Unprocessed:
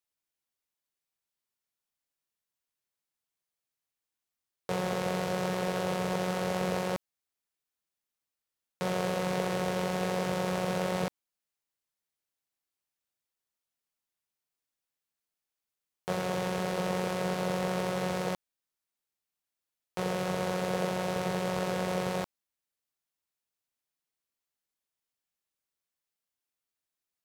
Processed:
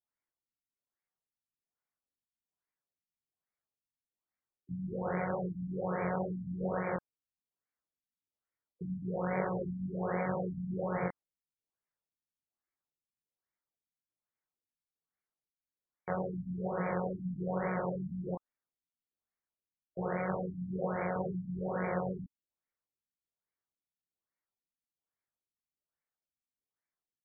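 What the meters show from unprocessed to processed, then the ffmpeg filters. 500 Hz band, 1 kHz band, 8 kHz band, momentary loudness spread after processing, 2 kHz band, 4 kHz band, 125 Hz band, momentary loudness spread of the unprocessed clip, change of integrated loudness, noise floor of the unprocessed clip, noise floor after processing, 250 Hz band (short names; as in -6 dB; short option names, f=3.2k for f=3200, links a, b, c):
-5.0 dB, -5.0 dB, under -35 dB, 6 LU, -6.0 dB, under -40 dB, -2.5 dB, 5 LU, -4.5 dB, under -85 dBFS, under -85 dBFS, -2.5 dB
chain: -af "highshelf=f=2.4k:g=11,flanger=delay=17:depth=6.3:speed=2.2,afftfilt=real='re*lt(b*sr/1024,260*pow(2400/260,0.5+0.5*sin(2*PI*1.2*pts/sr)))':imag='im*lt(b*sr/1024,260*pow(2400/260,0.5+0.5*sin(2*PI*1.2*pts/sr)))':win_size=1024:overlap=0.75"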